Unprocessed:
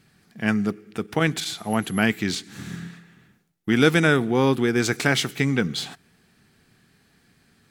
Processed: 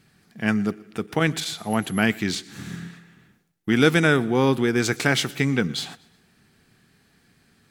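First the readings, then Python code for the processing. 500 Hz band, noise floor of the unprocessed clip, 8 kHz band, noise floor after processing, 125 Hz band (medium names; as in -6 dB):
0.0 dB, -62 dBFS, 0.0 dB, -62 dBFS, 0.0 dB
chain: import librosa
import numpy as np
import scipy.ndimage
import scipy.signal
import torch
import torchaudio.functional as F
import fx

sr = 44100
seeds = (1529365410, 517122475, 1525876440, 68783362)

y = fx.echo_feedback(x, sr, ms=120, feedback_pct=43, wet_db=-23.5)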